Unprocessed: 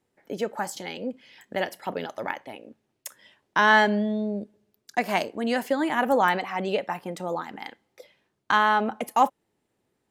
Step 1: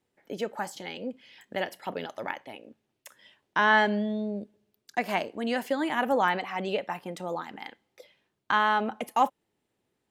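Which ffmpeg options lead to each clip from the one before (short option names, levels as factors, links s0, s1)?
-filter_complex "[0:a]equalizer=f=3100:t=o:w=0.97:g=3.5,acrossover=split=2800[s0][s1];[s1]alimiter=level_in=1.88:limit=0.0631:level=0:latency=1:release=112,volume=0.531[s2];[s0][s2]amix=inputs=2:normalize=0,volume=0.668"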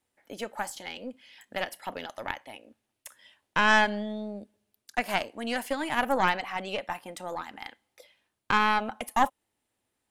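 -af "equalizer=f=160:t=o:w=0.67:g=-11,equalizer=f=400:t=o:w=0.67:g=-8,equalizer=f=10000:t=o:w=0.67:g=8,aeval=exprs='0.299*(cos(1*acos(clip(val(0)/0.299,-1,1)))-cos(1*PI/2))+0.0531*(cos(4*acos(clip(val(0)/0.299,-1,1)))-cos(4*PI/2))':c=same"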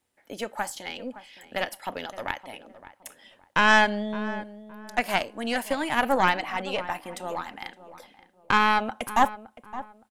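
-filter_complex "[0:a]asplit=2[s0][s1];[s1]adelay=566,lowpass=f=1400:p=1,volume=0.2,asplit=2[s2][s3];[s3]adelay=566,lowpass=f=1400:p=1,volume=0.31,asplit=2[s4][s5];[s5]adelay=566,lowpass=f=1400:p=1,volume=0.31[s6];[s0][s2][s4][s6]amix=inputs=4:normalize=0,volume=1.41"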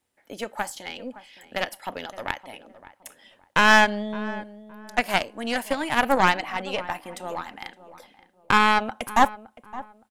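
-af "aeval=exprs='0.501*(cos(1*acos(clip(val(0)/0.501,-1,1)))-cos(1*PI/2))+0.0224*(cos(7*acos(clip(val(0)/0.501,-1,1)))-cos(7*PI/2))':c=same,volume=1.41"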